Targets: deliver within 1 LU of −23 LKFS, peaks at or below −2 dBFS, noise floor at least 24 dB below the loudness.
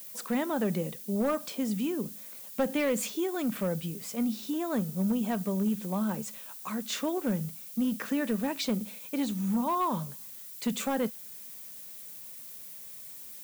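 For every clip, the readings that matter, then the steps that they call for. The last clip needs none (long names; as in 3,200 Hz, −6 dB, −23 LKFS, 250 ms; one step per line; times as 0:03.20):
share of clipped samples 0.6%; peaks flattened at −22.0 dBFS; background noise floor −45 dBFS; target noise floor −56 dBFS; integrated loudness −32.0 LKFS; sample peak −22.0 dBFS; target loudness −23.0 LKFS
→ clipped peaks rebuilt −22 dBFS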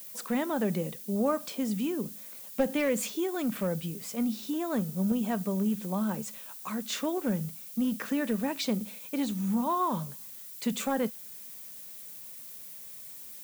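share of clipped samples 0.0%; background noise floor −45 dBFS; target noise floor −56 dBFS
→ broadband denoise 11 dB, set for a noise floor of −45 dBFS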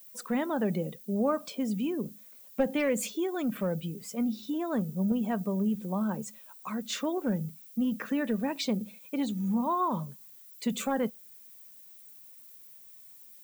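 background noise floor −52 dBFS; target noise floor −56 dBFS
→ broadband denoise 6 dB, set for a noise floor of −52 dBFS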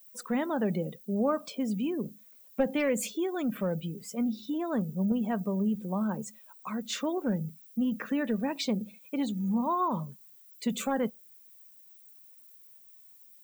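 background noise floor −56 dBFS; integrated loudness −31.5 LKFS; sample peak −15.0 dBFS; target loudness −23.0 LKFS
→ level +8.5 dB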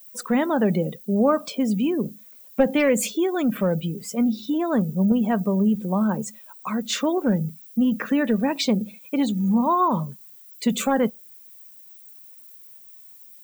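integrated loudness −23.0 LKFS; sample peak −6.5 dBFS; background noise floor −47 dBFS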